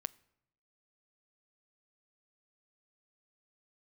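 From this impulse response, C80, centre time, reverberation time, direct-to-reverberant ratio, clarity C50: 26.0 dB, 1 ms, 0.80 s, 18.0 dB, 24.0 dB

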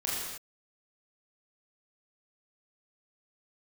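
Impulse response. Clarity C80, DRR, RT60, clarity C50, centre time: 0.5 dB, -7.0 dB, not exponential, -1.5 dB, 93 ms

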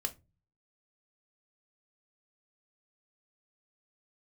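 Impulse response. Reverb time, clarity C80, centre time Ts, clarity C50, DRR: not exponential, 27.5 dB, 6 ms, 18.5 dB, 6.0 dB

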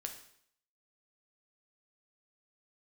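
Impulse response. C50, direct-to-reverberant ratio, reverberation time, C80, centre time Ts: 9.0 dB, 4.0 dB, 0.65 s, 12.0 dB, 16 ms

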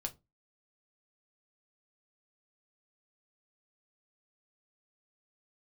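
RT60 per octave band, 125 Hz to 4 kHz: 0.35, 0.35, 0.25, 0.20, 0.15, 0.15 s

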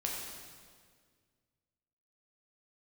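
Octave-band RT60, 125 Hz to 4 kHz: 2.4, 2.2, 2.0, 1.7, 1.6, 1.6 s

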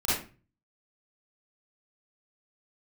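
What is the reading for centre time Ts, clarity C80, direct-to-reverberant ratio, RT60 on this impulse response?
63 ms, 6.0 dB, -12.0 dB, 0.35 s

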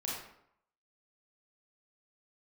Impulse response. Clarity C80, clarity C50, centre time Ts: 4.5 dB, 0.5 dB, 59 ms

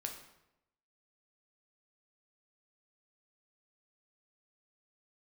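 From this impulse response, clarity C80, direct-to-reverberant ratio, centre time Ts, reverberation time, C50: 9.5 dB, 2.5 dB, 23 ms, 0.85 s, 7.0 dB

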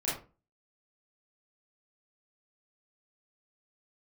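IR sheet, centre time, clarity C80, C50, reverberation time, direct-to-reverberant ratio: 44 ms, 10.0 dB, 3.0 dB, 0.35 s, -8.5 dB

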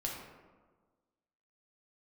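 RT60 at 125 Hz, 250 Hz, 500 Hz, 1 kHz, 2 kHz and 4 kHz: 1.5, 1.6, 1.5, 1.4, 1.0, 0.65 s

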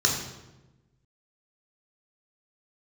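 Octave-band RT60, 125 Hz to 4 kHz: 1.6, 1.4, 1.2, 0.95, 0.85, 0.75 s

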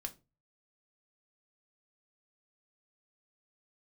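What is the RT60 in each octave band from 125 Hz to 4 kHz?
0.55, 0.35, 0.30, 0.25, 0.20, 0.20 s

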